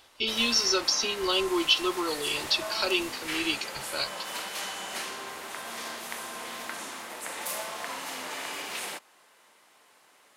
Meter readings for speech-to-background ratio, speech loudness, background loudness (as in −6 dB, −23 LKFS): 9.0 dB, −26.5 LKFS, −35.5 LKFS